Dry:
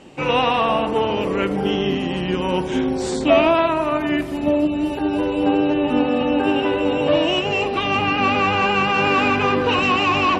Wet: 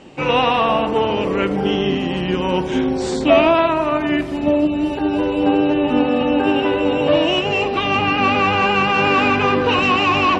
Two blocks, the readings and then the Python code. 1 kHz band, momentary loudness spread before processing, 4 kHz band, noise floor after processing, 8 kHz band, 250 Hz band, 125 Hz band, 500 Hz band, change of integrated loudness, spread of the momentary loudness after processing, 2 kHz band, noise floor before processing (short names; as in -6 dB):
+2.0 dB, 5 LU, +2.0 dB, -23 dBFS, n/a, +2.0 dB, +2.0 dB, +2.0 dB, +2.0 dB, 5 LU, +2.0 dB, -24 dBFS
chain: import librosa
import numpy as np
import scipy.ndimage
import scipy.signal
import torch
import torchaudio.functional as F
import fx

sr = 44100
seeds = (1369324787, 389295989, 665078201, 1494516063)

y = scipy.signal.sosfilt(scipy.signal.butter(2, 7400.0, 'lowpass', fs=sr, output='sos'), x)
y = y * librosa.db_to_amplitude(2.0)